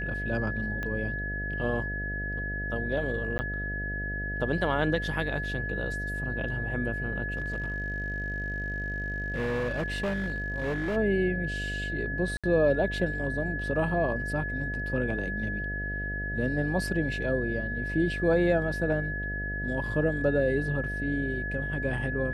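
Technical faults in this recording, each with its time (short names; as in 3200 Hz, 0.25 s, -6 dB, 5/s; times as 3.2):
buzz 50 Hz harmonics 14 -35 dBFS
tone 1700 Hz -33 dBFS
0.83 pop -21 dBFS
3.38–3.39 gap 10 ms
7.37–10.97 clipped -26 dBFS
12.37–12.44 gap 66 ms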